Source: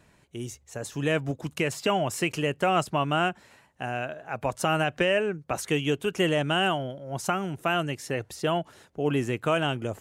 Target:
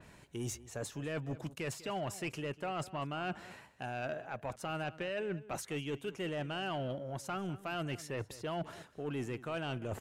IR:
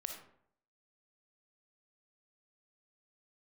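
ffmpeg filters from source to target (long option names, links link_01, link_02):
-filter_complex "[0:a]areverse,acompressor=threshold=-36dB:ratio=12,areverse,asoftclip=type=tanh:threshold=-33dB,asplit=2[link_01][link_02];[link_02]adelay=198.3,volume=-17dB,highshelf=frequency=4000:gain=-4.46[link_03];[link_01][link_03]amix=inputs=2:normalize=0,adynamicequalizer=threshold=0.001:dfrequency=4200:dqfactor=0.7:tfrequency=4200:tqfactor=0.7:attack=5:release=100:ratio=0.375:range=2.5:mode=cutabove:tftype=highshelf,volume=3dB"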